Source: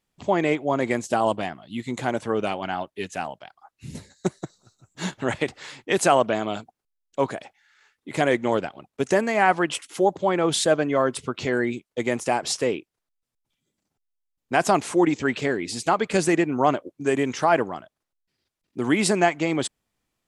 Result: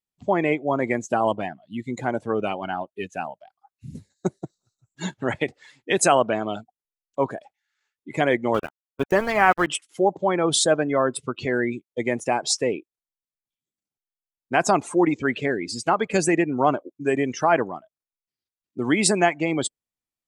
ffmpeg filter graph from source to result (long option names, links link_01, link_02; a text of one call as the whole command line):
ffmpeg -i in.wav -filter_complex "[0:a]asettb=1/sr,asplit=3[link_01][link_02][link_03];[link_01]atrim=end=8.544[link_04];[link_02]atrim=start=8.54:end=9.67,asetpts=PTS-STARTPTS,afade=type=in:duration=0.004:curve=qsin,afade=type=out:start_time=1.126:duration=0.004:curve=qsin,equalizer=frequency=1200:width_type=o:width=0.45:gain=5.5,aeval=exprs='val(0)+0.00562*(sin(2*PI*50*n/s)+sin(2*PI*2*50*n/s)/2+sin(2*PI*3*50*n/s)/3+sin(2*PI*4*50*n/s)/4+sin(2*PI*5*50*n/s)/5)':channel_layout=same,aeval=exprs='val(0)*gte(abs(val(0)),0.0562)':channel_layout=same[link_05];[link_03]atrim=start=9.666[link_06];[link_04][link_05]acrossfade=duration=0.004:curve1=hsin:curve2=qsin[link_07];[link_07][link_06]acrossfade=duration=0.004:curve1=qsin:curve2=hsin,afftdn=noise_reduction=19:noise_floor=-32,highshelf=frequency=4100:gain=7.5" out.wav